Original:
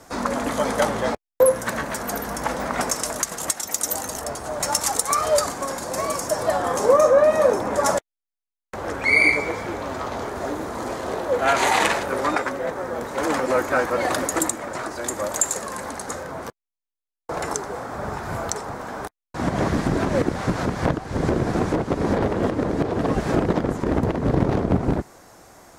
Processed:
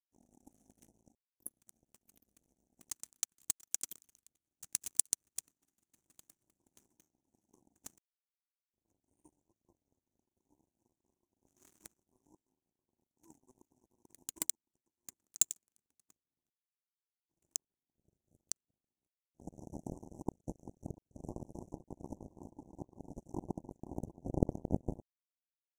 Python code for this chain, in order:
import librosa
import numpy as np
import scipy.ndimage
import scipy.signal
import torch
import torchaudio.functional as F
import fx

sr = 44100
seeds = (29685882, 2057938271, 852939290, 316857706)

y = fx.brickwall_bandstop(x, sr, low_hz=390.0, high_hz=5700.0)
y = fx.power_curve(y, sr, exponent=3.0)
y = F.gain(torch.from_numpy(y), 1.5).numpy()